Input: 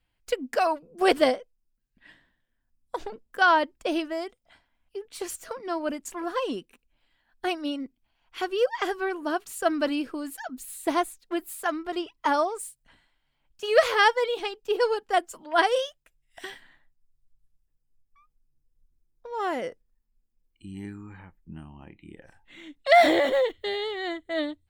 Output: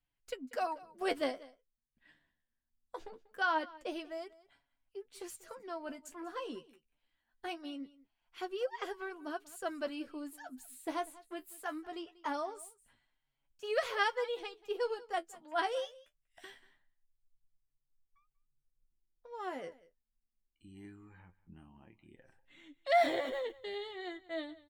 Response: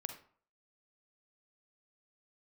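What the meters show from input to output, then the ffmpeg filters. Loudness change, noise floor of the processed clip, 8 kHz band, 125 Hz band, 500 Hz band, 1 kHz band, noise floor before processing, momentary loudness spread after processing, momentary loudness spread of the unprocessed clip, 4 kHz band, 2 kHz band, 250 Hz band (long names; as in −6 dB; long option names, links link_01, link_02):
−12.0 dB, −85 dBFS, −12.5 dB, can't be measured, −12.0 dB, −11.5 dB, −75 dBFS, 19 LU, 19 LU, −12.5 dB, −12.0 dB, −13.0 dB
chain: -af "flanger=delay=7.1:depth=6.2:regen=38:speed=0.22:shape=sinusoidal,aecho=1:1:190:0.0944,volume=-8.5dB"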